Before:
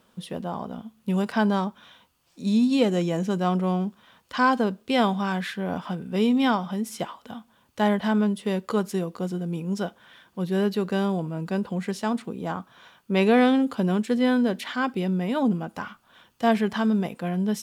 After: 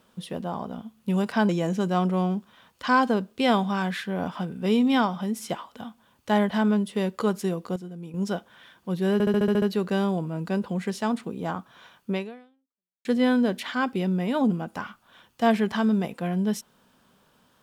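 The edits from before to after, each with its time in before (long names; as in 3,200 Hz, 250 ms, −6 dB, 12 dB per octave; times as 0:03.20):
0:01.49–0:02.99: remove
0:09.26–0:09.64: clip gain −9 dB
0:10.63: stutter 0.07 s, 8 plays
0:13.11–0:14.06: fade out exponential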